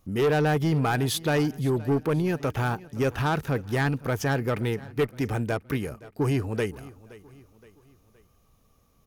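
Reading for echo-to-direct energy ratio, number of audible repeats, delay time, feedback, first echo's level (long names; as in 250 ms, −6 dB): −19.0 dB, 3, 520 ms, 46%, −20.0 dB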